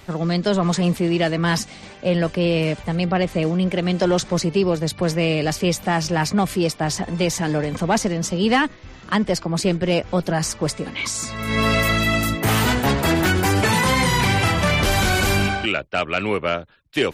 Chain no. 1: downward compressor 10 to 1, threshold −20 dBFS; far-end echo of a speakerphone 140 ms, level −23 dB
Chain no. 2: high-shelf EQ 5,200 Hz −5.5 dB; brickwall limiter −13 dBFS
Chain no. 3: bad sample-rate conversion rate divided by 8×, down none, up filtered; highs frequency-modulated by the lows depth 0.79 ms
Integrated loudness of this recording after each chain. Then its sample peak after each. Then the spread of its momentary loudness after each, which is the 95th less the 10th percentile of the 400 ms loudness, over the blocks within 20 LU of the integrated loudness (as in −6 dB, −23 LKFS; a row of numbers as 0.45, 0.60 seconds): −25.0, −22.5, −21.0 LKFS; −11.0, −13.0, −7.0 dBFS; 4, 5, 6 LU